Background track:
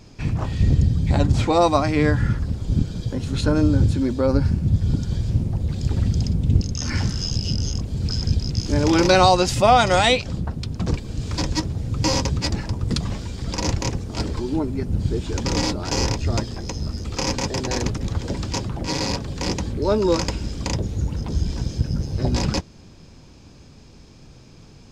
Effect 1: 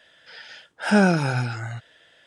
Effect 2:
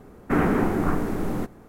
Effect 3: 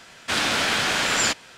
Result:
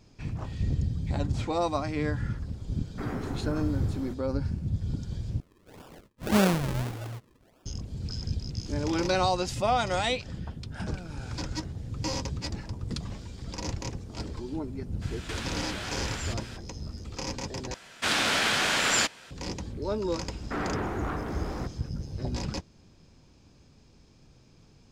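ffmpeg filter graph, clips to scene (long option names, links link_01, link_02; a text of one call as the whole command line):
ffmpeg -i bed.wav -i cue0.wav -i cue1.wav -i cue2.wav -filter_complex "[2:a]asplit=2[link_01][link_02];[1:a]asplit=2[link_03][link_04];[3:a]asplit=2[link_05][link_06];[0:a]volume=-11dB[link_07];[link_03]acrusher=samples=42:mix=1:aa=0.000001:lfo=1:lforange=42:lforate=1.7[link_08];[link_04]acompressor=threshold=-23dB:ratio=6:attack=3.2:release=140:knee=1:detection=peak[link_09];[link_05]acompressor=threshold=-36dB:ratio=6:attack=3.2:release=140:knee=1:detection=peak[link_10];[link_02]asplit=2[link_11][link_12];[link_12]highpass=frequency=720:poles=1,volume=21dB,asoftclip=type=tanh:threshold=-8.5dB[link_13];[link_11][link_13]amix=inputs=2:normalize=0,lowpass=frequency=2200:poles=1,volume=-6dB[link_14];[link_07]asplit=3[link_15][link_16][link_17];[link_15]atrim=end=5.404[link_18];[link_08]atrim=end=2.26,asetpts=PTS-STARTPTS,volume=-5.5dB[link_19];[link_16]atrim=start=7.656:end=17.744[link_20];[link_06]atrim=end=1.57,asetpts=PTS-STARTPTS,volume=-3dB[link_21];[link_17]atrim=start=19.306[link_22];[link_01]atrim=end=1.68,asetpts=PTS-STARTPTS,volume=-14.5dB,afade=type=in:duration=0.004:curve=hsin,afade=type=out:start_time=1.676:duration=0.004:curve=hsin,adelay=2680[link_23];[link_09]atrim=end=2.26,asetpts=PTS-STARTPTS,volume=-15.5dB,afade=type=in:duration=0.004:curve=hsin,afade=type=out:start_time=2.256:duration=0.004:curve=hsin,adelay=9920[link_24];[link_10]atrim=end=1.57,asetpts=PTS-STARTPTS,afade=type=in:duration=0.02,afade=type=out:start_time=1.55:duration=0.02,adelay=15010[link_25];[link_14]atrim=end=1.68,asetpts=PTS-STARTPTS,volume=-15dB,afade=type=in:duration=0.004:curve=hsin,afade=type=out:start_time=1.676:duration=0.004:curve=hsin,adelay=20210[link_26];[link_18][link_19]acrossfade=duration=0.004:curve1=hsin:curve2=hsin[link_27];[link_27][link_20]acrossfade=duration=0.004:curve1=hsin:curve2=hsin[link_28];[link_28][link_21]acrossfade=duration=0.004:curve1=hsin:curve2=hsin[link_29];[link_29][link_22]acrossfade=duration=0.004:curve1=hsin:curve2=hsin[link_30];[link_30][link_23][link_24][link_25][link_26]amix=inputs=5:normalize=0" out.wav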